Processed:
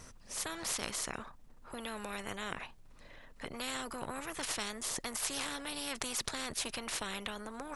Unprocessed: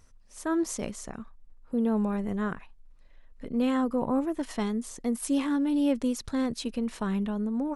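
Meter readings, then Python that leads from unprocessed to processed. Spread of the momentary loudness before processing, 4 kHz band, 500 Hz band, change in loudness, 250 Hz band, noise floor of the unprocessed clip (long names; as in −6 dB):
10 LU, +5.0 dB, −12.0 dB, −9.0 dB, −19.5 dB, −54 dBFS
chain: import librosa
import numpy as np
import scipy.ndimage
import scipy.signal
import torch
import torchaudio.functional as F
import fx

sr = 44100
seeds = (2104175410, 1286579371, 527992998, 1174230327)

y = fx.spectral_comp(x, sr, ratio=4.0)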